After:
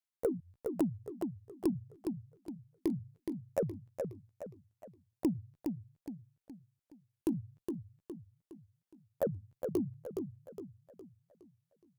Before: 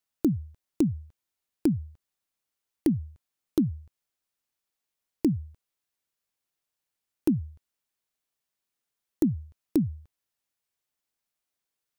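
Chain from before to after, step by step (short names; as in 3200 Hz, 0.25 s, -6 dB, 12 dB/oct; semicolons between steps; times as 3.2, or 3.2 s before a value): repeated pitch sweeps +11.5 st, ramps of 0.403 s; added harmonics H 3 -21 dB, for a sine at -12 dBFS; warbling echo 0.416 s, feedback 42%, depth 120 cents, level -5.5 dB; gain -5.5 dB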